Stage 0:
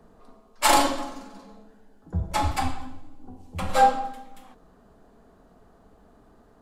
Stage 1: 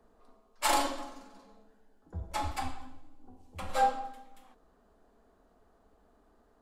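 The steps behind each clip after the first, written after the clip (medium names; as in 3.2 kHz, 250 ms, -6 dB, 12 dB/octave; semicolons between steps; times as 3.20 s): peaking EQ 140 Hz -12.5 dB 0.84 oct; trim -8.5 dB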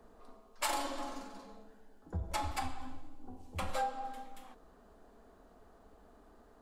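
compression 5:1, threshold -38 dBFS, peak gain reduction 15 dB; trim +5 dB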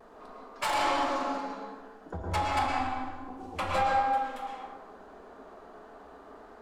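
overdrive pedal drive 18 dB, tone 2.3 kHz, clips at -19 dBFS; vibrato 0.33 Hz 16 cents; reverberation RT60 1.2 s, pre-delay 103 ms, DRR -1.5 dB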